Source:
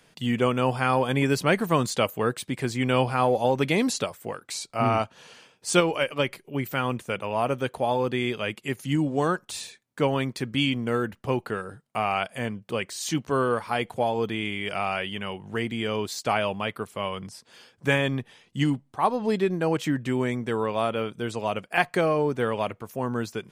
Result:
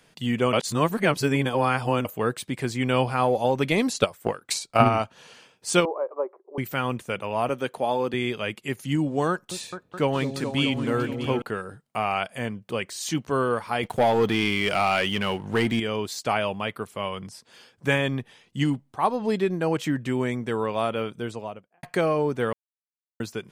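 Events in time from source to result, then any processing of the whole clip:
0.53–2.05 s: reverse
3.71–4.91 s: transient shaper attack +11 dB, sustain -3 dB
5.85–6.58 s: elliptic band-pass 370–1100 Hz, stop band 60 dB
7.49–8.14 s: high-pass 170 Hz
9.30–11.42 s: delay with an opening low-pass 212 ms, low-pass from 400 Hz, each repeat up 2 oct, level -6 dB
13.83–15.80 s: waveshaping leveller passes 2
21.09–21.83 s: studio fade out
22.53–23.20 s: mute

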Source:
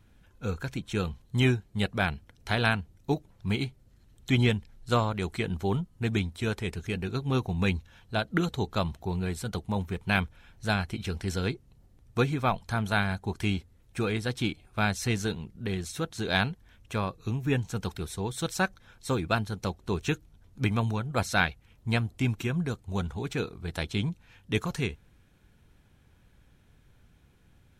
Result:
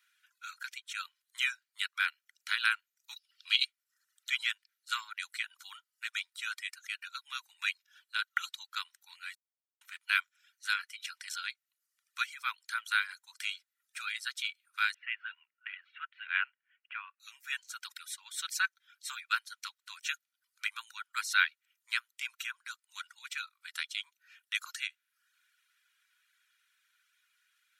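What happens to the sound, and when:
3.16–3.65 s: high-order bell 3.8 kHz +12 dB 1.3 oct
9.35–9.81 s: mute
14.94–17.20 s: Chebyshev band-pass 120–2900 Hz, order 5
whole clip: steep high-pass 1.3 kHz 48 dB/octave; reverb removal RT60 0.59 s; comb 2.1 ms, depth 32%

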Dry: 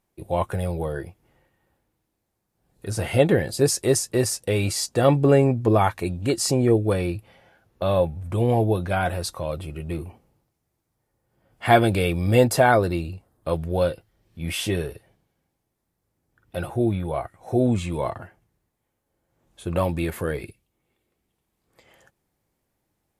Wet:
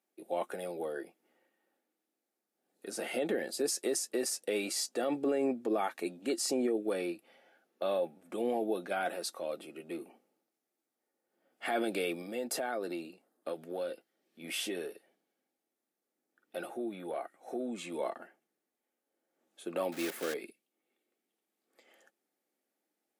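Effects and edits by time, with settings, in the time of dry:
12.21–17.95 s: compression 16:1, threshold -22 dBFS
19.92–20.34 s: block-companded coder 3-bit
whole clip: steep high-pass 230 Hz 36 dB/octave; band-stop 1 kHz, Q 5.1; peak limiter -15.5 dBFS; trim -7.5 dB

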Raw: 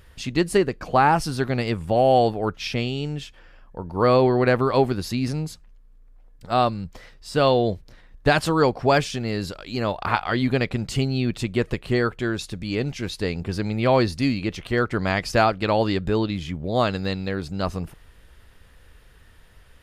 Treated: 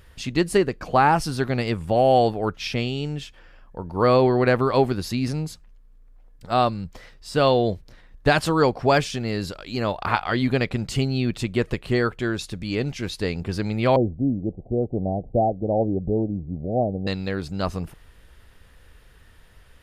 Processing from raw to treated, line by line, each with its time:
13.96–17.07 s: Chebyshev low-pass 770 Hz, order 6

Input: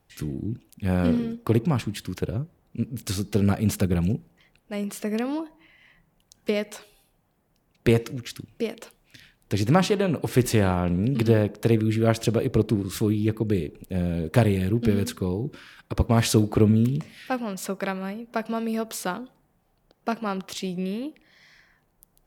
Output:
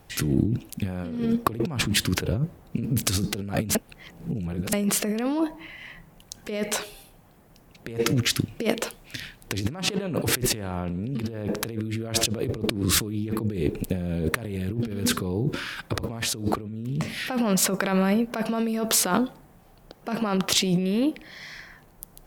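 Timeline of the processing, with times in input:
3.75–4.73 s: reverse
whole clip: compressor with a negative ratio -33 dBFS, ratio -1; trim +6 dB

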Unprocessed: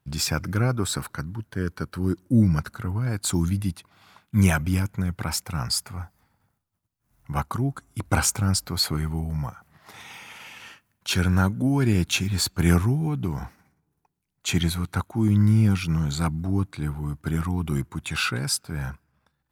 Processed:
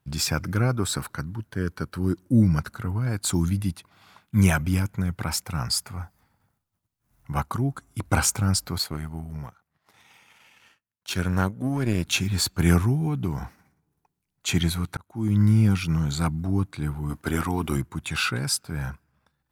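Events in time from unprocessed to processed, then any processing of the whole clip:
8.78–12.05 s: power-law waveshaper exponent 1.4
14.97–15.43 s: fade in
17.09–17.75 s: spectral peaks clipped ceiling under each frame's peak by 13 dB

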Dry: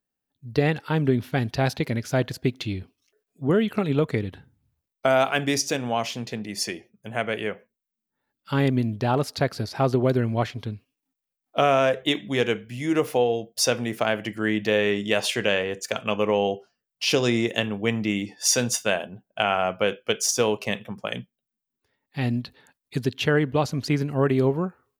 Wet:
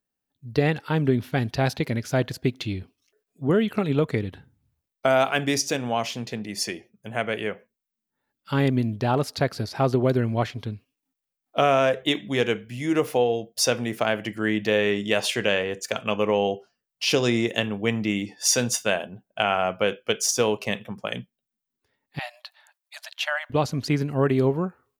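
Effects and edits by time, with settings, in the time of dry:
22.19–23.50 s: brick-wall FIR high-pass 570 Hz

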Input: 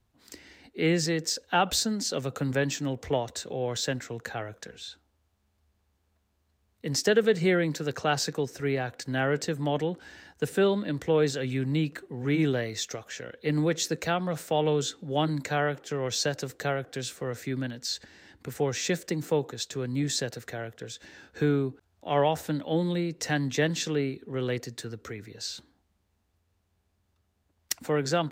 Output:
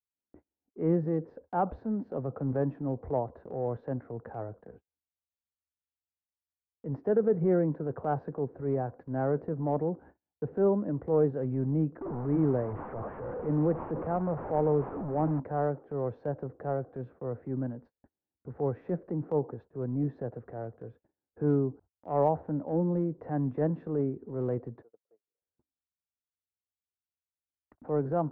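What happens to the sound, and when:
12.01–15.40 s: one-bit delta coder 16 kbps, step -28 dBFS
24.82–25.42 s: ladder band-pass 670 Hz, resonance 55%
whole clip: low-pass 1 kHz 24 dB/octave; gate -50 dBFS, range -38 dB; transient shaper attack -6 dB, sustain 0 dB

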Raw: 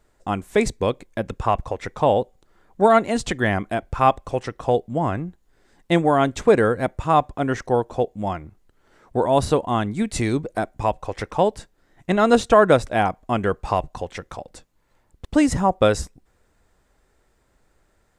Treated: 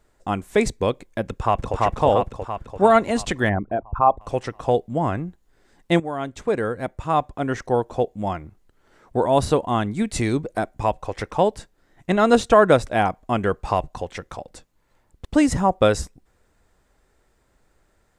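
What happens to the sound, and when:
1.24–1.78 s: echo throw 340 ms, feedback 60%, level -0.5 dB
3.49–4.21 s: resonances exaggerated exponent 2
6.00–7.95 s: fade in linear, from -12.5 dB

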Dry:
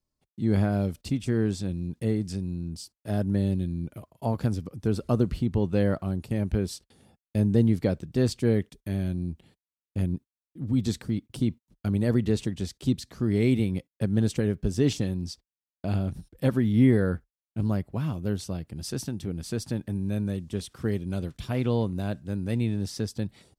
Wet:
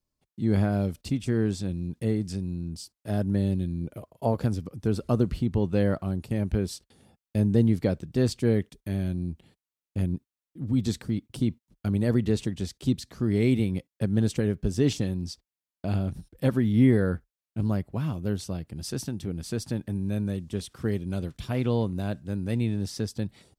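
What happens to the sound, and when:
3.81–4.45 s: peaking EQ 500 Hz +7 dB 0.87 oct

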